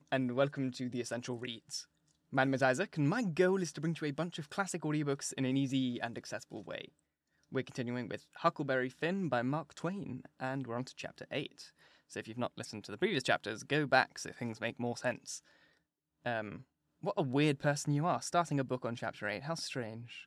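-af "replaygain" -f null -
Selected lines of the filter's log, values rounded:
track_gain = +15.4 dB
track_peak = 0.160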